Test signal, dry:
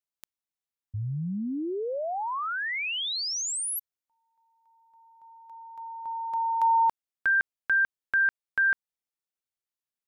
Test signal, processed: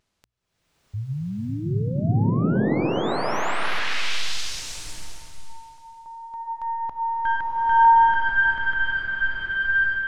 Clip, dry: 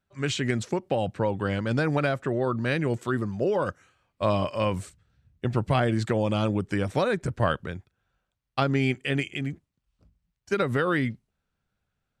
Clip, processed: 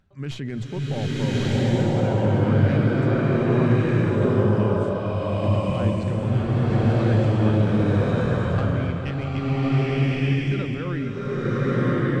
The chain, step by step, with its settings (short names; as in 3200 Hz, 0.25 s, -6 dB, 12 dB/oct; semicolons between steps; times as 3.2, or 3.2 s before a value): tracing distortion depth 0.052 ms; low shelf 260 Hz +12 dB; notches 60/120 Hz; vibrato 0.34 Hz 13 cents; air absorption 71 m; limiter -15.5 dBFS; upward compressor, threshold -47 dBFS; bloom reverb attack 1.23 s, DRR -10.5 dB; gain -6.5 dB